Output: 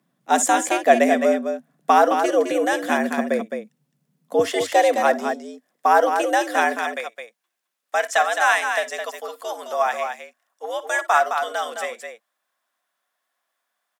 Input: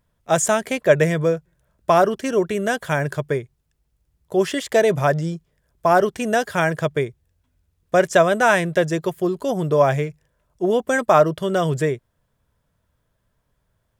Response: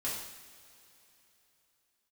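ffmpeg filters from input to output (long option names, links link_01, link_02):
-af "asetnsamples=nb_out_samples=441:pad=0,asendcmd='4.39 highpass f 240;6.77 highpass f 770',highpass=53,afreqshift=94,aecho=1:1:56|59|213:0.1|0.126|0.473"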